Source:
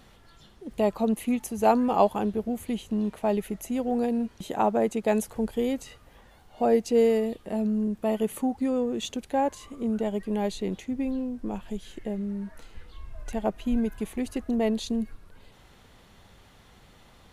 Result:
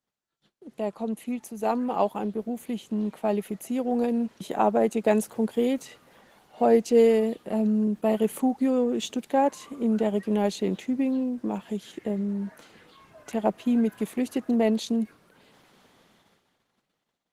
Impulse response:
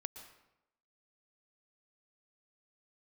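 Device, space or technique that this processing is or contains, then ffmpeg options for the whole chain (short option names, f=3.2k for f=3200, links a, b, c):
video call: -af "highpass=f=150:w=0.5412,highpass=f=150:w=1.3066,dynaudnorm=f=410:g=11:m=10dB,agate=range=-30dB:threshold=-53dB:ratio=16:detection=peak,volume=-5.5dB" -ar 48000 -c:a libopus -b:a 16k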